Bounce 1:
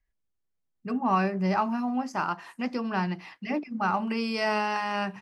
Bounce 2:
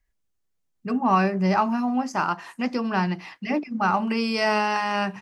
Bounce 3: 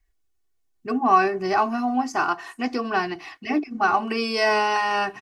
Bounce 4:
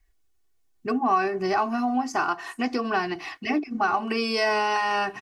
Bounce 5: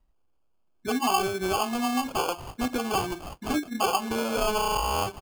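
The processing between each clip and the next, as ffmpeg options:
ffmpeg -i in.wav -af "equalizer=frequency=6600:width_type=o:width=0.61:gain=3,volume=4.5dB" out.wav
ffmpeg -i in.wav -af "aecho=1:1:2.7:0.81" out.wav
ffmpeg -i in.wav -af "acompressor=threshold=-29dB:ratio=2,volume=3.5dB" out.wav
ffmpeg -i in.wav -af "acrusher=samples=23:mix=1:aa=0.000001,volume=-2dB" out.wav

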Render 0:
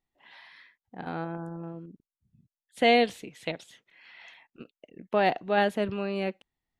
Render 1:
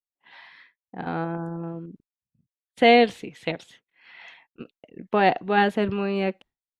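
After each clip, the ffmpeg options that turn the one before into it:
ffmpeg -i in.wav -af "highshelf=frequency=5800:gain=-11,agate=range=-33dB:threshold=-51dB:ratio=3:detection=peak,bandreject=frequency=610:width=12,volume=6dB" out.wav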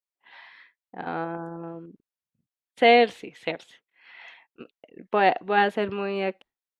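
ffmpeg -i in.wav -af "bass=frequency=250:gain=-10,treble=frequency=4000:gain=-4" out.wav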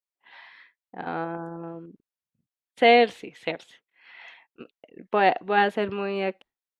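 ffmpeg -i in.wav -af anull out.wav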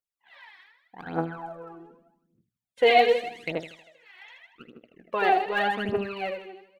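ffmpeg -i in.wav -af "aecho=1:1:79|158|237|316|395|474|553:0.473|0.265|0.148|0.0831|0.0465|0.0261|0.0146,aphaser=in_gain=1:out_gain=1:delay=2.8:decay=0.77:speed=0.84:type=triangular,volume=-6.5dB" out.wav

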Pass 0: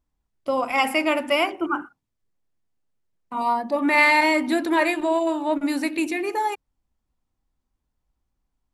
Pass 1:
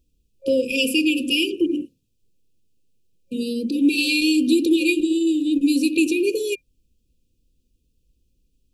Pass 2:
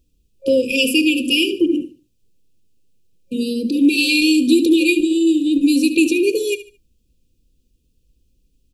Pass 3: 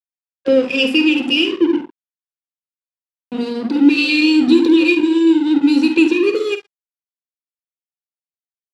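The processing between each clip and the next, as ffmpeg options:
ffmpeg -i in.wav -filter_complex "[0:a]afftfilt=real='re*(1-between(b*sr/4096,540,2400))':imag='im*(1-between(b*sr/4096,540,2400))':win_size=4096:overlap=0.75,asplit=2[link_01][link_02];[link_02]acompressor=threshold=-32dB:ratio=6,volume=1.5dB[link_03];[link_01][link_03]amix=inputs=2:normalize=0,volume=3.5dB" out.wav
ffmpeg -i in.wav -af "aecho=1:1:73|146|219:0.188|0.0527|0.0148,volume=4dB" out.wav
ffmpeg -i in.wav -filter_complex "[0:a]aeval=exprs='sgn(val(0))*max(abs(val(0))-0.0335,0)':channel_layout=same,highpass=130,lowpass=3800,asplit=2[link_01][link_02];[link_02]adelay=49,volume=-10dB[link_03];[link_01][link_03]amix=inputs=2:normalize=0,volume=3dB" out.wav

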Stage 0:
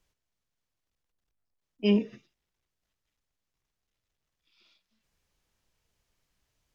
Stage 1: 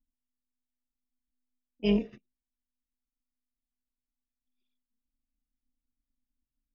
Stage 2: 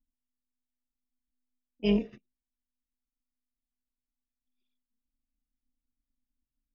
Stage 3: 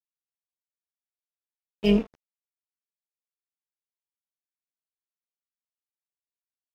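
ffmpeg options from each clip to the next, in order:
ffmpeg -i in.wav -af "anlmdn=0.000398,tremolo=f=250:d=0.462" out.wav
ffmpeg -i in.wav -af anull out.wav
ffmpeg -i in.wav -af "aeval=exprs='sgn(val(0))*max(abs(val(0))-0.00668,0)':channel_layout=same,volume=5.5dB" out.wav

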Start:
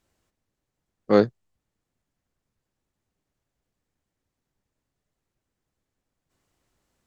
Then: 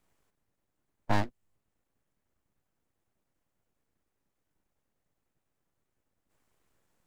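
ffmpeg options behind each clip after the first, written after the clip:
ffmpeg -i in.wav -filter_complex "[0:a]equalizer=frequency=4600:width_type=o:width=1.4:gain=-7,aeval=exprs='abs(val(0))':channel_layout=same,acrossover=split=420|1800[link_01][link_02][link_03];[link_01]acompressor=threshold=-27dB:ratio=4[link_04];[link_02]acompressor=threshold=-35dB:ratio=4[link_05];[link_03]acompressor=threshold=-39dB:ratio=4[link_06];[link_04][link_05][link_06]amix=inputs=3:normalize=0,volume=2dB" out.wav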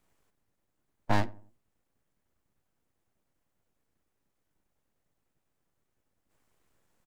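ffmpeg -i in.wav -filter_complex "[0:a]asplit=2[link_01][link_02];[link_02]adelay=89,lowpass=frequency=890:poles=1,volume=-18.5dB,asplit=2[link_03][link_04];[link_04]adelay=89,lowpass=frequency=890:poles=1,volume=0.4,asplit=2[link_05][link_06];[link_06]adelay=89,lowpass=frequency=890:poles=1,volume=0.4[link_07];[link_01][link_03][link_05][link_07]amix=inputs=4:normalize=0,volume=1dB" out.wav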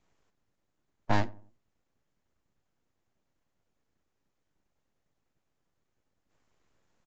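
ffmpeg -i in.wav -ar 16000 -c:a aac -b:a 64k out.aac

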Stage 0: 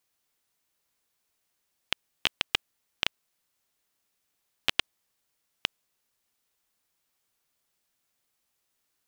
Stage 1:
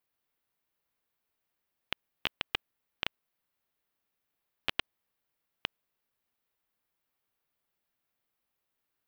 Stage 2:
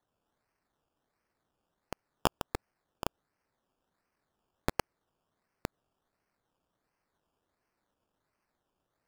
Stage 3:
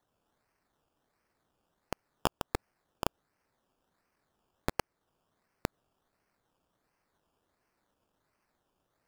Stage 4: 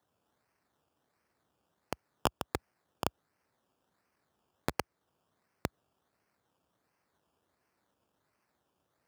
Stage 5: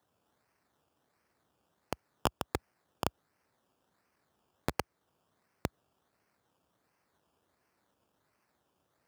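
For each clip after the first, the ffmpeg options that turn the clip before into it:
ffmpeg -i in.wav -af "equalizer=frequency=7100:width=0.76:gain=-12.5,volume=-3dB" out.wav
ffmpeg -i in.wav -af "acrusher=samples=17:mix=1:aa=0.000001:lfo=1:lforange=10.2:lforate=1.4,volume=1dB" out.wav
ffmpeg -i in.wav -af "alimiter=limit=-15dB:level=0:latency=1:release=357,volume=3.5dB" out.wav
ffmpeg -i in.wav -af "highpass=frequency=62:width=0.5412,highpass=frequency=62:width=1.3066" out.wav
ffmpeg -i in.wav -af "asoftclip=type=tanh:threshold=-14.5dB,volume=2dB" out.wav

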